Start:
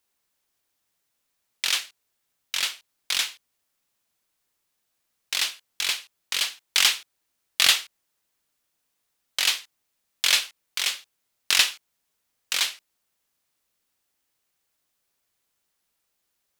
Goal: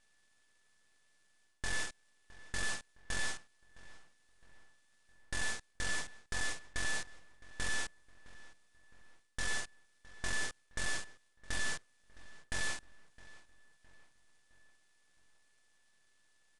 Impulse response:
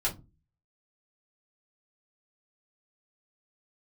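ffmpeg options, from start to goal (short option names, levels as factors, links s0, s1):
-filter_complex "[0:a]equalizer=f=850:t=o:w=1.3:g=9.5,areverse,acompressor=threshold=0.0355:ratio=6,areverse,asoftclip=type=tanh:threshold=0.0168,aeval=exprs='val(0)*sin(2*PI*870*n/s)':c=same,aeval=exprs='abs(val(0))':c=same,asplit=2[s0][s1];[s1]adelay=663,lowpass=f=3200:p=1,volume=0.119,asplit=2[s2][s3];[s3]adelay=663,lowpass=f=3200:p=1,volume=0.49,asplit=2[s4][s5];[s5]adelay=663,lowpass=f=3200:p=1,volume=0.49,asplit=2[s6][s7];[s7]adelay=663,lowpass=f=3200:p=1,volume=0.49[s8];[s2][s4][s6][s8]amix=inputs=4:normalize=0[s9];[s0][s9]amix=inputs=2:normalize=0,aresample=22050,aresample=44100,volume=2.99"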